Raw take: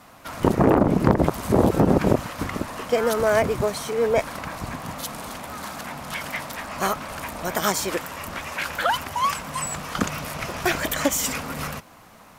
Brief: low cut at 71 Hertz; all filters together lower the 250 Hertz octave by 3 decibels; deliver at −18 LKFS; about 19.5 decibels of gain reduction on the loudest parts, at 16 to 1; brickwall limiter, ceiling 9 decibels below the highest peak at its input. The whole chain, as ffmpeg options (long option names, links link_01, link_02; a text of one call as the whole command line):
ffmpeg -i in.wav -af "highpass=71,equalizer=frequency=250:width_type=o:gain=-4,acompressor=threshold=-34dB:ratio=16,volume=21dB,alimiter=limit=-7dB:level=0:latency=1" out.wav